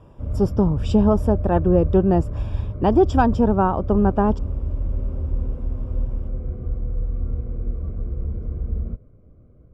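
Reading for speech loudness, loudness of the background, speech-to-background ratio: -20.0 LUFS, -28.0 LUFS, 8.0 dB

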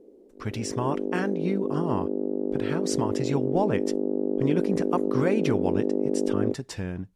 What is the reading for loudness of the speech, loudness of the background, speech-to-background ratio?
-30.0 LUFS, -28.0 LUFS, -2.0 dB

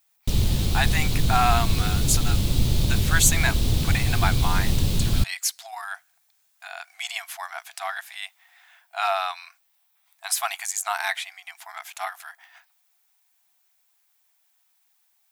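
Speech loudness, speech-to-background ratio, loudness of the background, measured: -27.5 LUFS, -3.0 dB, -24.5 LUFS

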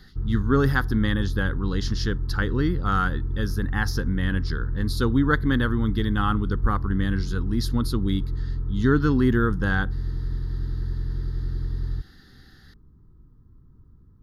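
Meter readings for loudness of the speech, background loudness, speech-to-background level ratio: -25.5 LUFS, -30.5 LUFS, 5.0 dB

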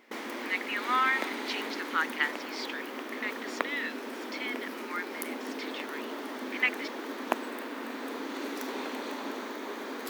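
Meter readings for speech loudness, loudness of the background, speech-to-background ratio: -33.0 LUFS, -37.0 LUFS, 4.0 dB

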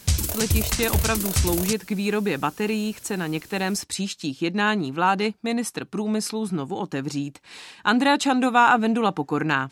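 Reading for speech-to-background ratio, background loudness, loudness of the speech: 0.5 dB, -24.5 LUFS, -24.0 LUFS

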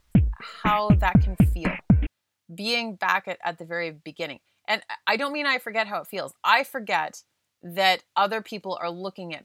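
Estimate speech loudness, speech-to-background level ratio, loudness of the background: -26.0 LUFS, -3.0 dB, -23.0 LUFS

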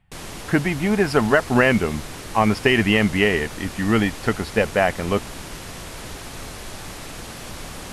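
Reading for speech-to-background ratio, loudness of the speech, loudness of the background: 15.0 dB, -20.0 LUFS, -35.0 LUFS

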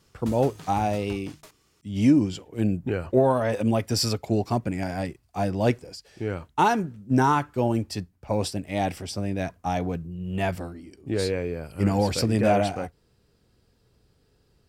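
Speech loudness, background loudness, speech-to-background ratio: -25.5 LUFS, -43.5 LUFS, 18.0 dB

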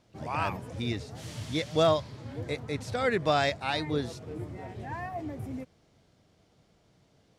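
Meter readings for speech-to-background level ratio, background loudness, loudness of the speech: 11.0 dB, -41.0 LUFS, -30.0 LUFS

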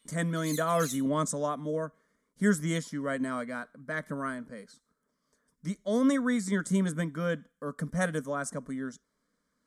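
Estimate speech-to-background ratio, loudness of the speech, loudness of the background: 9.5 dB, -31.0 LUFS, -40.5 LUFS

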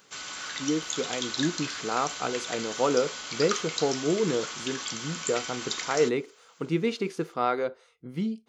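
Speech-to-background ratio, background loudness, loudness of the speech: 3.5 dB, -33.5 LUFS, -30.0 LUFS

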